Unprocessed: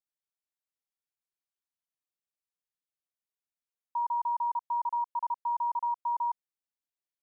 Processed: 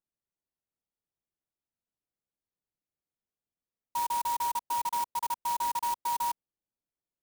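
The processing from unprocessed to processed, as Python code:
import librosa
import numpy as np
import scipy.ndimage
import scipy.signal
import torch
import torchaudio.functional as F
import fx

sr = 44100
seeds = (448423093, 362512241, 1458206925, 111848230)

y = fx.tilt_shelf(x, sr, db=9.5, hz=930.0)
y = fx.clock_jitter(y, sr, seeds[0], jitter_ms=0.056)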